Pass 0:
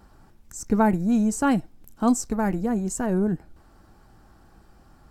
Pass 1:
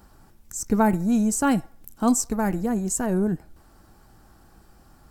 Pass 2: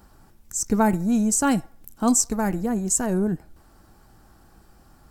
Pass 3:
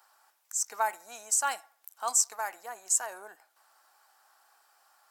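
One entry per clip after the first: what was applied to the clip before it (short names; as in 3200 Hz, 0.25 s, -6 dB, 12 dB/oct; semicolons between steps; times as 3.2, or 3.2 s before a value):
high shelf 6800 Hz +10 dB; band-limited delay 66 ms, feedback 44%, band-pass 1100 Hz, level -22 dB
dynamic EQ 6400 Hz, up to +6 dB, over -41 dBFS, Q 0.9
HPF 750 Hz 24 dB/oct; gain -3.5 dB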